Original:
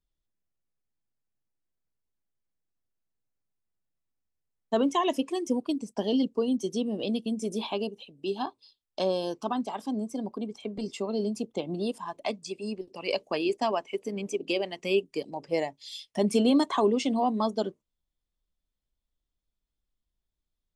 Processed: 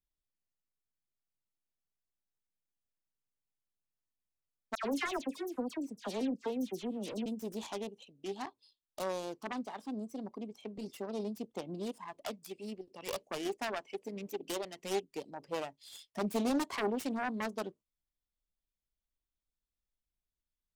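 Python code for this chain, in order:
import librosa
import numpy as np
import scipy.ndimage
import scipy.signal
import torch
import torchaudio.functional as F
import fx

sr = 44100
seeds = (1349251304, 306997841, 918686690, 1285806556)

y = fx.self_delay(x, sr, depth_ms=0.48)
y = fx.dispersion(y, sr, late='lows', ms=87.0, hz=2200.0, at=(4.75, 7.26))
y = y * librosa.db_to_amplitude(-8.5)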